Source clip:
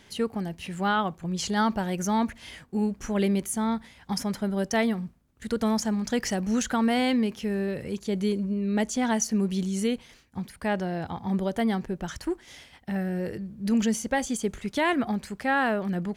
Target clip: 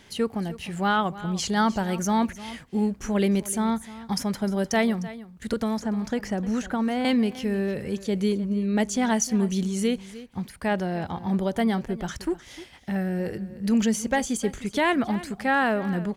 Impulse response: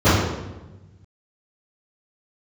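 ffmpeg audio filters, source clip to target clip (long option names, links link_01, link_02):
-filter_complex "[0:a]asettb=1/sr,asplit=3[link_01][link_02][link_03];[link_01]atrim=end=5.534[link_04];[link_02]atrim=start=5.53:end=7.05,asetpts=PTS-STARTPTS,afade=type=in:duration=0.004:curve=qsin,afade=type=out:start_time=1.516:duration=0.004:curve=qsin,acrossover=split=960|2300[link_05][link_06][link_07];[link_05]acompressor=threshold=-25dB:ratio=4[link_08];[link_06]acompressor=threshold=-41dB:ratio=4[link_09];[link_07]acompressor=threshold=-47dB:ratio=4[link_10];[link_08][link_09][link_10]amix=inputs=3:normalize=0[link_11];[link_03]atrim=start=7.046[link_12];[link_04][link_11]acrossfade=duration=0.004:curve1=hsin:curve2=qsin[link_13];[link_13][link_12]acrossfade=duration=0.004:curve1=qsin:curve2=hsin,aecho=1:1:305:0.15,volume=2dB"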